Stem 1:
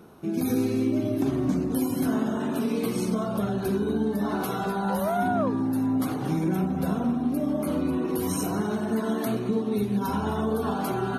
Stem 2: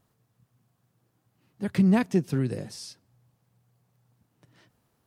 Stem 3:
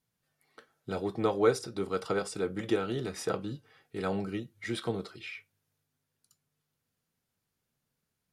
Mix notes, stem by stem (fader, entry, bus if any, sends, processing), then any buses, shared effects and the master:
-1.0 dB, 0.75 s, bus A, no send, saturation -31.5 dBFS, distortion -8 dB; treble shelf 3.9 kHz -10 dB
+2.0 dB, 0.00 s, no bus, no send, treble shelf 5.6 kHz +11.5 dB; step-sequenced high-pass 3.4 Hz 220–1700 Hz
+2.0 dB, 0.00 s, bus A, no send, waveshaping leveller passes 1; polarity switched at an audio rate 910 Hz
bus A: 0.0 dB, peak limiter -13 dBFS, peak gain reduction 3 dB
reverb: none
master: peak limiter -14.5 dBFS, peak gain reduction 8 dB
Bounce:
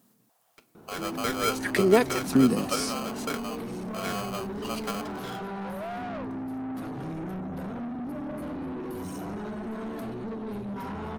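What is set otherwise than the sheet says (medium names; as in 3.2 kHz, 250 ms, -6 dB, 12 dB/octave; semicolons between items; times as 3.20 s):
stem 3 +2.0 dB -> -5.5 dB; master: missing peak limiter -14.5 dBFS, peak gain reduction 8 dB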